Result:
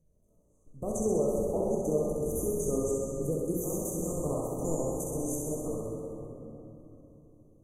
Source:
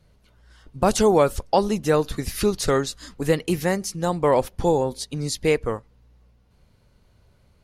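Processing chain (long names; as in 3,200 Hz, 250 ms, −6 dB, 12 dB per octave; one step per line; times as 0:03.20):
0:03.53–0:05.68: ceiling on every frequency bin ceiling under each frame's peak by 23 dB
flat-topped bell 1,300 Hz −15.5 dB
mains-hum notches 60/120/180 Hz
output level in coarse steps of 11 dB
brickwall limiter −20 dBFS, peak gain reduction 12.5 dB
flanger 0.88 Hz, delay 4.3 ms, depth 7.9 ms, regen −79%
linear-phase brick-wall band-stop 1,300–5,900 Hz
feedback echo with a high-pass in the loop 65 ms, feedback 71%, high-pass 460 Hz, level −4 dB
rectangular room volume 210 cubic metres, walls hard, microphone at 0.57 metres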